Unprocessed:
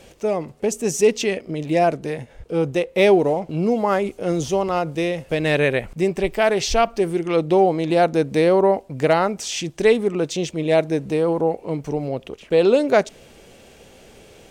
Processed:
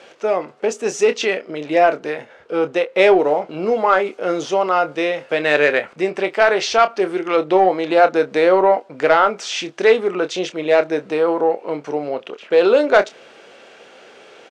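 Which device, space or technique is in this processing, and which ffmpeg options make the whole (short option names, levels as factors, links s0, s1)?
intercom: -filter_complex "[0:a]highpass=400,lowpass=4500,equalizer=f=1400:t=o:w=0.54:g=7.5,asoftclip=type=tanh:threshold=0.447,asplit=2[s0][s1];[s1]adelay=27,volume=0.299[s2];[s0][s2]amix=inputs=2:normalize=0,volume=1.68"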